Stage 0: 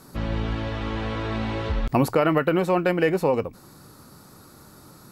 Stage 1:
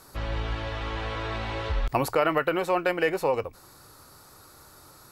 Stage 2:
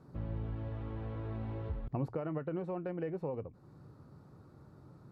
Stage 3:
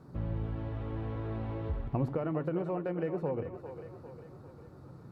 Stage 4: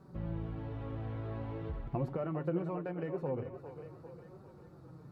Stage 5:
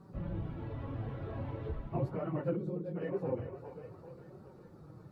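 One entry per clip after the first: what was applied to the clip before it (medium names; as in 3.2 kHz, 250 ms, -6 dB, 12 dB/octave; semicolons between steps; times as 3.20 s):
peaking EQ 200 Hz -14.5 dB 1.4 oct
compression 1.5:1, threshold -43 dBFS, peak gain reduction 9 dB; band-pass filter 160 Hz, Q 1.5; trim +7 dB
two-band feedback delay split 350 Hz, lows 83 ms, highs 400 ms, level -9.5 dB; trim +4 dB
flange 0.45 Hz, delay 5.1 ms, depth 2.8 ms, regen +40%; trim +1 dB
phase randomisation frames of 50 ms; time-frequency box 2.56–2.96 s, 540–3200 Hz -16 dB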